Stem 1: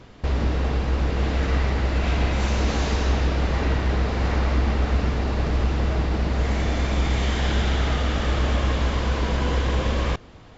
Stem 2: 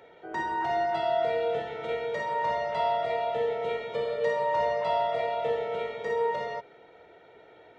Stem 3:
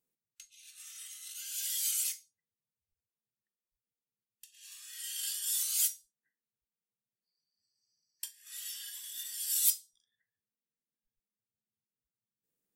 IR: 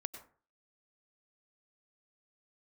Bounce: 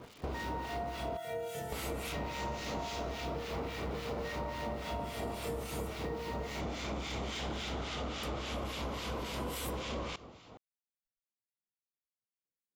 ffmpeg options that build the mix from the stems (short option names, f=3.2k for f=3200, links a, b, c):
-filter_complex "[0:a]highpass=f=210:p=1,equalizer=f=1.7k:t=o:w=0.24:g=-12.5,asoftclip=type=tanh:threshold=-23.5dB,volume=-2dB,asplit=3[a][b][c];[a]atrim=end=1.17,asetpts=PTS-STARTPTS,afade=t=out:st=1.166:d=0.004:c=hsin[d];[b]atrim=start=1.17:end=1.72,asetpts=PTS-STARTPTS,volume=0[e];[c]atrim=start=1.72,asetpts=PTS-STARTPTS,afade=t=in:d=0.004:c=hsin[f];[d][e][f]concat=n=3:v=0:a=1,asplit=2[g][h];[h]volume=-13.5dB[i];[1:a]asubboost=boost=6.5:cutoff=230,acrusher=bits=7:mix=0:aa=0.000001,volume=-2dB[j];[2:a]volume=-10.5dB[k];[3:a]atrim=start_sample=2205[l];[i][l]afir=irnorm=-1:irlink=0[m];[g][j][k][m]amix=inputs=4:normalize=0,acrossover=split=1500[n][o];[n]aeval=exprs='val(0)*(1-0.7/2+0.7/2*cos(2*PI*3.6*n/s))':c=same[p];[o]aeval=exprs='val(0)*(1-0.7/2-0.7/2*cos(2*PI*3.6*n/s))':c=same[q];[p][q]amix=inputs=2:normalize=0,acompressor=threshold=-35dB:ratio=6"